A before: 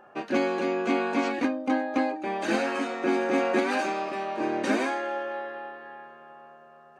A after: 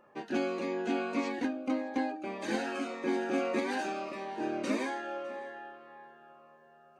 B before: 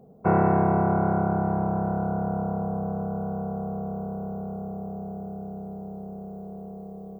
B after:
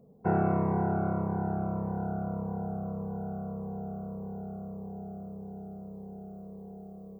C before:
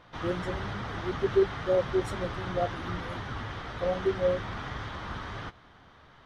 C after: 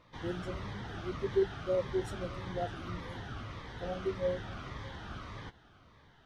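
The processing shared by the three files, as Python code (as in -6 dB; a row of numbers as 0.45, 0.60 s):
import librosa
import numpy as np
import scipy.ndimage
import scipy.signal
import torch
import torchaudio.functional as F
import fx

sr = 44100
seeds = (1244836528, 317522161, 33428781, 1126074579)

p1 = x + fx.echo_single(x, sr, ms=606, db=-22.5, dry=0)
p2 = fx.notch_cascade(p1, sr, direction='falling', hz=1.7)
y = F.gain(torch.from_numpy(p2), -5.0).numpy()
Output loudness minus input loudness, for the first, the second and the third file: -6.5, -6.5, -6.0 LU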